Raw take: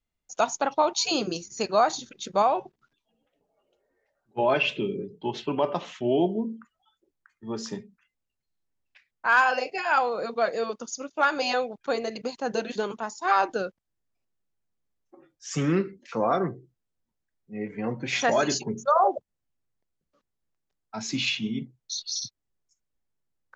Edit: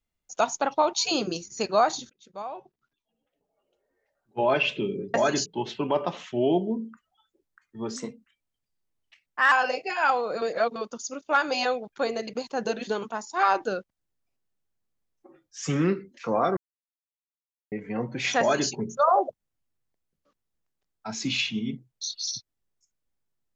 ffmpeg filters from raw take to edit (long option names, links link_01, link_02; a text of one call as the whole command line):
ffmpeg -i in.wav -filter_complex "[0:a]asplit=10[link_01][link_02][link_03][link_04][link_05][link_06][link_07][link_08][link_09][link_10];[link_01]atrim=end=2.1,asetpts=PTS-STARTPTS,afade=type=out:start_time=2.096:duration=0.004:curve=hsin:silence=0.0630957[link_11];[link_02]atrim=start=2.1:end=5.142,asetpts=PTS-STARTPTS,afade=type=in:duration=2.42:silence=0.0630957[link_12];[link_03]atrim=start=18.278:end=18.602[link_13];[link_04]atrim=start=5.138:end=7.644[link_14];[link_05]atrim=start=7.64:end=9.4,asetpts=PTS-STARTPTS,asetrate=49833,aresample=44100[link_15];[link_06]atrim=start=9.396:end=10.302[link_16];[link_07]atrim=start=10.298:end=10.642,asetpts=PTS-STARTPTS,areverse[link_17];[link_08]atrim=start=10.638:end=16.45,asetpts=PTS-STARTPTS,afade=type=out:start_time=5.808:duration=0.004:curve=hsin[link_18];[link_09]atrim=start=16.45:end=17.6,asetpts=PTS-STARTPTS,volume=0[link_19];[link_10]atrim=start=17.6,asetpts=PTS-STARTPTS,afade=type=in:duration=0.004:curve=hsin[link_20];[link_11][link_12]concat=n=2:v=0:a=1[link_21];[link_21][link_13]acrossfade=duration=0.004:curve1=hsin:curve2=hsin[link_22];[link_22][link_14]acrossfade=duration=0.004:curve1=hsin:curve2=hsin[link_23];[link_23][link_15]acrossfade=duration=0.004:curve1=hsin:curve2=hsin[link_24];[link_24][link_16]acrossfade=duration=0.004:curve1=hsin:curve2=hsin[link_25];[link_25][link_17]acrossfade=duration=0.004:curve1=hsin:curve2=hsin[link_26];[link_18][link_19][link_20]concat=n=3:v=0:a=1[link_27];[link_26][link_27]acrossfade=duration=0.004:curve1=hsin:curve2=hsin" out.wav